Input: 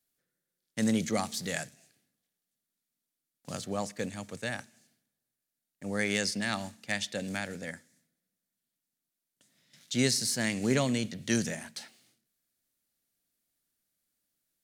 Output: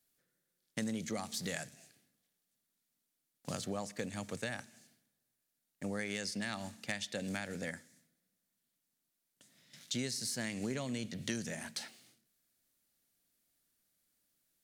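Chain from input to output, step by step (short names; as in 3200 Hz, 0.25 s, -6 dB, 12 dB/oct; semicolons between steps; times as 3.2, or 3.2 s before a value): compressor 6:1, threshold -38 dBFS, peak gain reduction 15.5 dB; gain +2.5 dB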